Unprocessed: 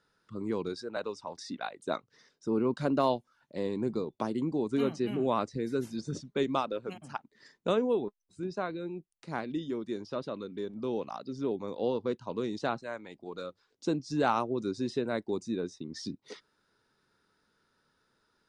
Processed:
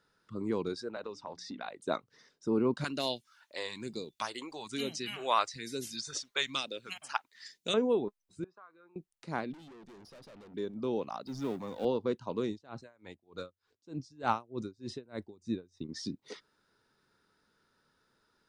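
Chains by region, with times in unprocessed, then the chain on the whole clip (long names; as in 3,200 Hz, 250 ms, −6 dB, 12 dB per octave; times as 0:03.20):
0:00.92–0:01.68: low-pass filter 6,000 Hz + downward compressor 4 to 1, threshold −36 dBFS + mains-hum notches 60/120/180/240/300 Hz
0:02.84–0:07.74: tilt shelving filter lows −10 dB, about 680 Hz + all-pass phaser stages 2, 1.1 Hz, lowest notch 150–1,200 Hz
0:08.44–0:08.96: resonant band-pass 1,200 Hz, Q 5.6 + downward compressor 2.5 to 1, threshold −54 dBFS
0:09.53–0:10.54: downward compressor 2 to 1, threshold −36 dBFS + tube saturation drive 51 dB, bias 0.8
0:11.26–0:11.85: mu-law and A-law mismatch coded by mu + parametric band 400 Hz −7.5 dB 0.78 octaves + multiband upward and downward expander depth 40%
0:12.49–0:15.89: parametric band 88 Hz +13 dB 0.61 octaves + tremolo with a sine in dB 3.3 Hz, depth 28 dB
whole clip: no processing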